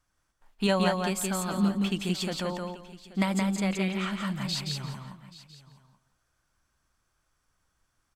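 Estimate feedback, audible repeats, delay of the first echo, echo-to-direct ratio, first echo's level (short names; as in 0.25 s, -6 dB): no steady repeat, 5, 0.172 s, -2.5 dB, -3.0 dB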